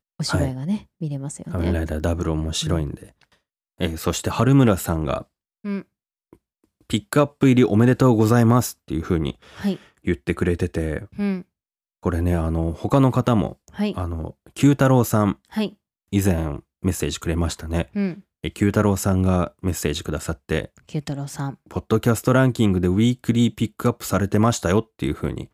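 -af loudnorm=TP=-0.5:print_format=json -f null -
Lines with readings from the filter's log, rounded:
"input_i" : "-21.8",
"input_tp" : "-4.6",
"input_lra" : "5.3",
"input_thresh" : "-32.2",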